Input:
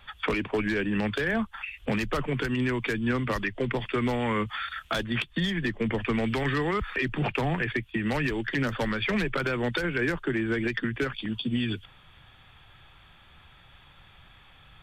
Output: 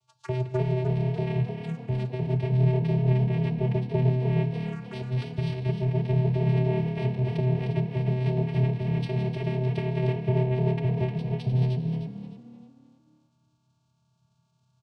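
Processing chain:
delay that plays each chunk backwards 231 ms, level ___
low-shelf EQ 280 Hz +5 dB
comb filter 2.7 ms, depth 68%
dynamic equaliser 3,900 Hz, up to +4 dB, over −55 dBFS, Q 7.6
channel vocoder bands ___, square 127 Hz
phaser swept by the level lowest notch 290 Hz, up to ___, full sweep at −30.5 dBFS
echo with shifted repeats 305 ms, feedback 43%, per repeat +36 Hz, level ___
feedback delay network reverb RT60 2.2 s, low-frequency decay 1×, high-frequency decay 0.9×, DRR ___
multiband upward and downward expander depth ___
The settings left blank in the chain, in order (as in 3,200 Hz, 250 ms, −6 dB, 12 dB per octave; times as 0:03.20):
−13.5 dB, 4, 1,300 Hz, −5.5 dB, 10.5 dB, 40%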